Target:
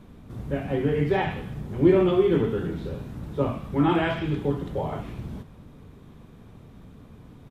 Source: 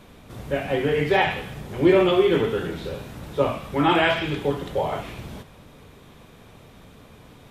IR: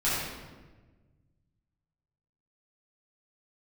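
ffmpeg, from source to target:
-af "firequalizer=gain_entry='entry(230,0);entry(550,-9);entry(1100,-8);entry(2400,-13)':delay=0.05:min_phase=1,volume=2.5dB"

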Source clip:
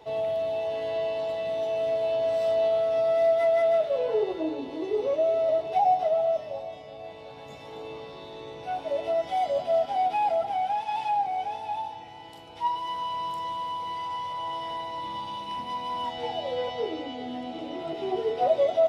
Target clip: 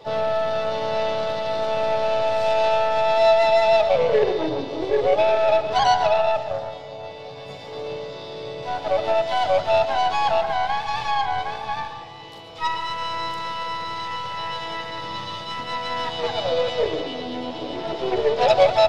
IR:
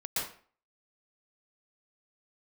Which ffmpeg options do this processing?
-filter_complex "[0:a]aeval=exprs='0.237*(cos(1*acos(clip(val(0)/0.237,-1,1)))-cos(1*PI/2))+0.00335*(cos(5*acos(clip(val(0)/0.237,-1,1)))-cos(5*PI/2))+0.0335*(cos(6*acos(clip(val(0)/0.237,-1,1)))-cos(6*PI/2))+0.0473*(cos(8*acos(clip(val(0)/0.237,-1,1)))-cos(8*PI/2))':channel_layout=same,equalizer=frequency=125:width_type=o:width=1:gain=11,equalizer=frequency=500:width_type=o:width=1:gain=9,equalizer=frequency=2000:width_type=o:width=1:gain=5,equalizer=frequency=4000:width_type=o:width=1:gain=10,asplit=2[link_01][link_02];[link_02]asetrate=58866,aresample=44100,atempo=0.749154,volume=-8dB[link_03];[link_01][link_03]amix=inputs=2:normalize=0,asplit=2[link_04][link_05];[1:a]atrim=start_sample=2205[link_06];[link_05][link_06]afir=irnorm=-1:irlink=0,volume=-14dB[link_07];[link_04][link_07]amix=inputs=2:normalize=0,volume=-3.5dB"

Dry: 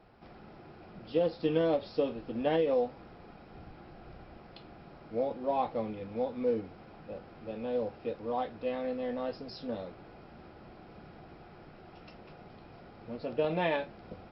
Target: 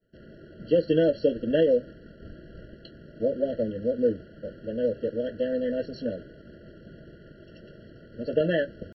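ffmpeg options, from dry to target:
ffmpeg -i in.wav -af "agate=range=-33dB:threshold=-48dB:ratio=3:detection=peak,atempo=1.6,afftfilt=real='re*eq(mod(floor(b*sr/1024/670),2),0)':imag='im*eq(mod(floor(b*sr/1024/670),2),0)':win_size=1024:overlap=0.75,volume=7.5dB" out.wav

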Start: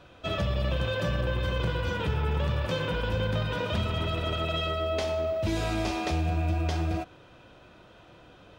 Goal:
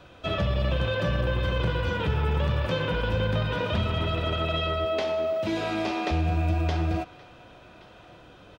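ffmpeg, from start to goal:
ffmpeg -i in.wav -filter_complex "[0:a]asettb=1/sr,asplit=3[link_01][link_02][link_03];[link_01]atrim=end=4.854[link_04];[link_02]atrim=start=4.85:end=6.11,asetpts=PTS-STARTPTS,afade=type=in:duration=0.004:curve=qsin,afade=type=out:start_time=1.256:duration=0.004:curve=qsin,highpass=180[link_05];[link_03]atrim=start=6.106[link_06];[link_04][link_05]acrossfade=duration=0.004:curve1=hsin:curve2=qsin[link_07];[link_07][link_06]acrossfade=duration=0.004:curve1=qsin:curve2=hsin,acrossover=split=560|4700[link_08][link_09][link_10];[link_09]aecho=1:1:1123:0.0944[link_11];[link_10]acompressor=threshold=-60dB:ratio=6[link_12];[link_08][link_11][link_12]amix=inputs=3:normalize=0,volume=2.5dB" out.wav

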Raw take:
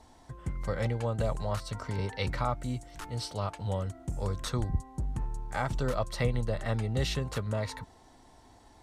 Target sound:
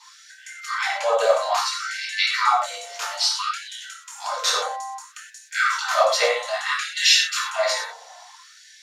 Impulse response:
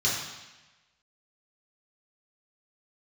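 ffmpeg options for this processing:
-filter_complex "[0:a]asettb=1/sr,asplit=3[link_01][link_02][link_03];[link_01]atrim=end=6.714[link_04];[link_02]atrim=start=6.71:end=7.21,asetpts=PTS-STARTPTS,afade=type=in:duration=0.004:curve=qsin,afade=type=out:start_time=0.496:duration=0.004:curve=qsin,aecho=1:1:5.5:0.99,atrim=end_sample=22050[link_05];[link_03]atrim=start=7.206[link_06];[link_04][link_05]acrossfade=duration=0.004:curve1=hsin:curve2=qsin[link_07];[link_07][link_06]acrossfade=duration=0.004:curve1=qsin:curve2=hsin[link_08];[1:a]atrim=start_sample=2205,afade=type=out:start_time=0.18:duration=0.01,atrim=end_sample=8379[link_09];[link_08][link_09]afir=irnorm=-1:irlink=0,afftfilt=real='re*gte(b*sr/1024,430*pow(1500/430,0.5+0.5*sin(2*PI*0.6*pts/sr)))':imag='im*gte(b*sr/1024,430*pow(1500/430,0.5+0.5*sin(2*PI*0.6*pts/sr)))':win_size=1024:overlap=0.75,volume=6.5dB"

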